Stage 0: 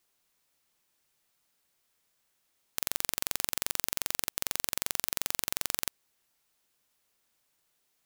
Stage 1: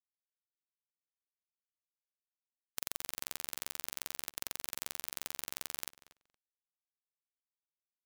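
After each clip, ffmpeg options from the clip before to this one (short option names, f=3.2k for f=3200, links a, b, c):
-filter_complex "[0:a]acompressor=threshold=-36dB:ratio=6,afftfilt=real='re*gte(hypot(re,im),0.000501)':imag='im*gte(hypot(re,im),0.000501)':win_size=1024:overlap=0.75,asplit=2[a][b];[b]adelay=233,lowpass=f=4.4k:p=1,volume=-16dB,asplit=2[c][d];[d]adelay=233,lowpass=f=4.4k:p=1,volume=0.16[e];[a][c][e]amix=inputs=3:normalize=0,volume=3.5dB"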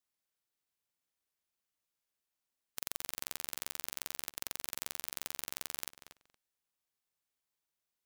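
-af "alimiter=limit=-16.5dB:level=0:latency=1:release=173,volume=7dB"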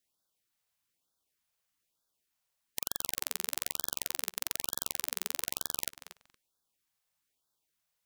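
-af "afftfilt=real='re*(1-between(b*sr/1024,270*pow(2400/270,0.5+0.5*sin(2*PI*1.1*pts/sr))/1.41,270*pow(2400/270,0.5+0.5*sin(2*PI*1.1*pts/sr))*1.41))':imag='im*(1-between(b*sr/1024,270*pow(2400/270,0.5+0.5*sin(2*PI*1.1*pts/sr))/1.41,270*pow(2400/270,0.5+0.5*sin(2*PI*1.1*pts/sr))*1.41))':win_size=1024:overlap=0.75,volume=6dB"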